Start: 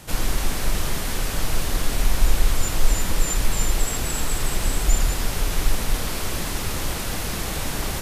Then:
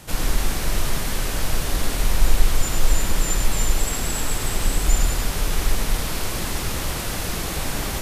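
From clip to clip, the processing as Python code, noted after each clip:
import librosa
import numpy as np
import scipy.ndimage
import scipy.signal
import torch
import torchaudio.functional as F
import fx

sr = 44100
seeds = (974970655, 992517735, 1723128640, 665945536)

y = x + 10.0 ** (-6.5 / 20.0) * np.pad(x, (int(101 * sr / 1000.0), 0))[:len(x)]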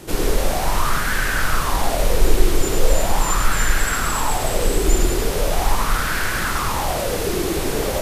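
y = fx.bell_lfo(x, sr, hz=0.4, low_hz=360.0, high_hz=1600.0, db=16)
y = y * 10.0 ** (1.0 / 20.0)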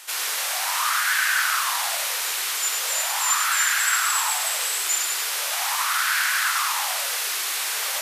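y = scipy.signal.sosfilt(scipy.signal.bessel(4, 1500.0, 'highpass', norm='mag', fs=sr, output='sos'), x)
y = y * 10.0 ** (4.0 / 20.0)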